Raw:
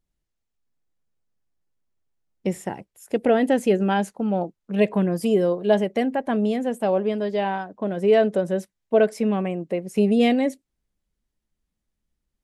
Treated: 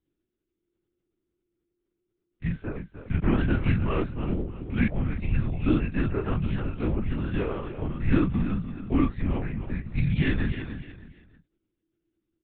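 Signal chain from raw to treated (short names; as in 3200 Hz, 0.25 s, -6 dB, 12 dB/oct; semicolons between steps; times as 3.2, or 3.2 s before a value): spectral dilation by 60 ms; frequency shift -350 Hz; on a send: feedback echo 0.301 s, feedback 31%, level -10 dB; on the sum: LPC vocoder at 8 kHz whisper; gain -7 dB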